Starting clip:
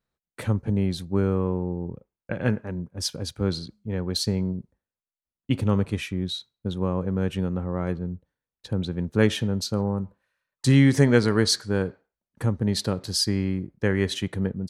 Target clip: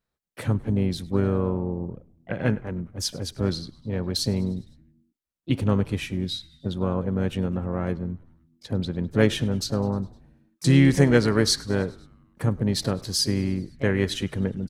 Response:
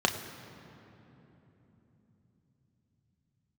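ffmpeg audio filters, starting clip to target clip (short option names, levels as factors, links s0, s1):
-filter_complex "[0:a]asplit=2[s0][s1];[s1]asetrate=55563,aresample=44100,atempo=0.793701,volume=0.251[s2];[s0][s2]amix=inputs=2:normalize=0,asplit=6[s3][s4][s5][s6][s7][s8];[s4]adelay=102,afreqshift=-84,volume=0.0708[s9];[s5]adelay=204,afreqshift=-168,volume=0.0447[s10];[s6]adelay=306,afreqshift=-252,volume=0.0282[s11];[s7]adelay=408,afreqshift=-336,volume=0.0178[s12];[s8]adelay=510,afreqshift=-420,volume=0.0111[s13];[s3][s9][s10][s11][s12][s13]amix=inputs=6:normalize=0"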